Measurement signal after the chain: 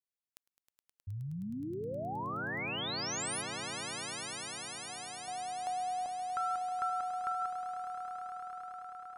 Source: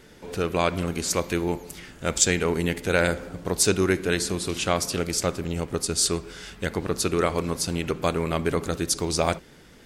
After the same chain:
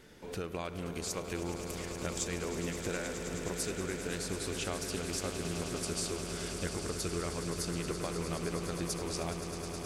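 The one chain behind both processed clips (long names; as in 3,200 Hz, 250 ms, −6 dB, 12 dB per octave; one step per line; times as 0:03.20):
downward compressor, threshold −29 dBFS
on a send: echo that builds up and dies away 105 ms, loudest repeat 8, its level −12 dB
on the sum: level −6 dB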